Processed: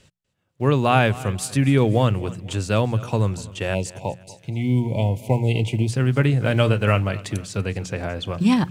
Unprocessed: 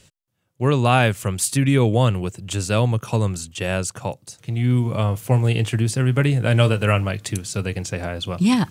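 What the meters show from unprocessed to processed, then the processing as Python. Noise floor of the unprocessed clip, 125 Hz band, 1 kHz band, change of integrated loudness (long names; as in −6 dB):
−71 dBFS, −1.5 dB, −0.5 dB, −1.0 dB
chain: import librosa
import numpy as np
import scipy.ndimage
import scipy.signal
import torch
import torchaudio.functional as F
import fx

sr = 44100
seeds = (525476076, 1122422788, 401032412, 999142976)

y = fx.block_float(x, sr, bits=7)
y = fx.spec_box(y, sr, start_s=3.74, length_s=2.15, low_hz=1000.0, high_hz=2000.0, gain_db=-29)
y = fx.lowpass(y, sr, hz=3600.0, slope=6)
y = fx.hum_notches(y, sr, base_hz=60, count=3)
y = fx.echo_feedback(y, sr, ms=245, feedback_pct=42, wet_db=-19.0)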